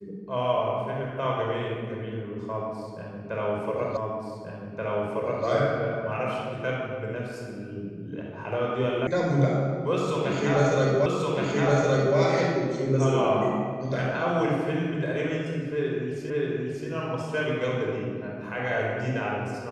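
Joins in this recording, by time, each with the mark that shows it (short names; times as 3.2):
3.97 repeat of the last 1.48 s
9.07 sound cut off
11.06 repeat of the last 1.12 s
16.3 repeat of the last 0.58 s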